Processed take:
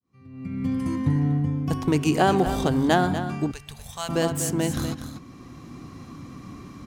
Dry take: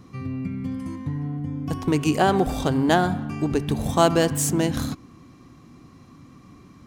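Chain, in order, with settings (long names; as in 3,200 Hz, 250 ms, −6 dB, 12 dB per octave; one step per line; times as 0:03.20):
fade in at the beginning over 0.97 s
single-tap delay 242 ms −11 dB
automatic gain control gain up to 14 dB
0:03.51–0:04.09: guitar amp tone stack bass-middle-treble 10-0-10
level −7 dB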